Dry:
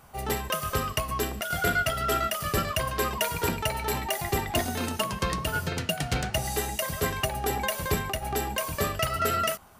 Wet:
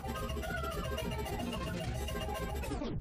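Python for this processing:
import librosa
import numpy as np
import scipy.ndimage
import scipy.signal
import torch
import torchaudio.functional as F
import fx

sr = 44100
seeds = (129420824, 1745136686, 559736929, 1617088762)

y = fx.tape_stop_end(x, sr, length_s=1.32)
y = fx.stretch_vocoder_free(y, sr, factor=0.52)
y = fx.lowpass(y, sr, hz=2300.0, slope=6)
y = fx.peak_eq(y, sr, hz=1100.0, db=-7.0, octaves=2.3)
y = fx.doubler(y, sr, ms=17.0, db=-4.0)
y = fx.stretch_grains(y, sr, factor=0.59, grain_ms=99.0)
y = fx.env_flatten(y, sr, amount_pct=70)
y = y * 10.0 ** (-6.5 / 20.0)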